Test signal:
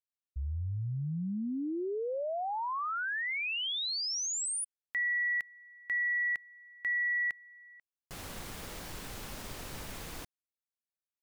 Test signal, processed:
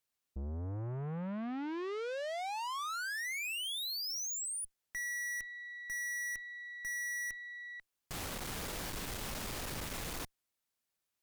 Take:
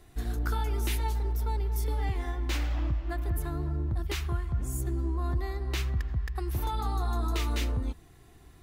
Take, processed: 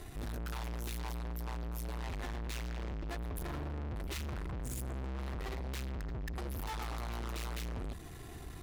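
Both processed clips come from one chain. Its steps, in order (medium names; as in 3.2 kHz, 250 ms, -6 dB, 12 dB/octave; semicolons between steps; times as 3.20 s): valve stage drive 48 dB, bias 0.4; trim +10 dB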